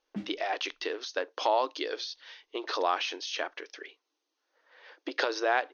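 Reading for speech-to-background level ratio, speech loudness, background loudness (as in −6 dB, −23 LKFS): 12.0 dB, −32.0 LKFS, −44.0 LKFS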